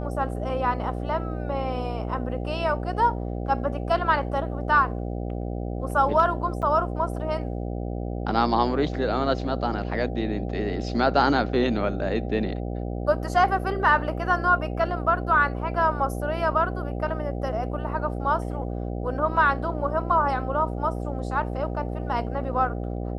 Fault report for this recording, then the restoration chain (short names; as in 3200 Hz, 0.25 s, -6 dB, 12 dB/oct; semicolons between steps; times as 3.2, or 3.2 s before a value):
buzz 60 Hz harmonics 13 -30 dBFS
6.62–6.63 gap 7.2 ms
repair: de-hum 60 Hz, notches 13; interpolate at 6.62, 7.2 ms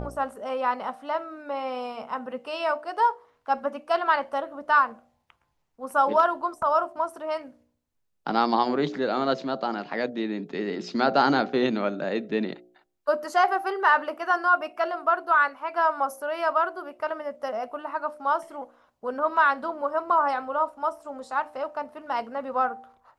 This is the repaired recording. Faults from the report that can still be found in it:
none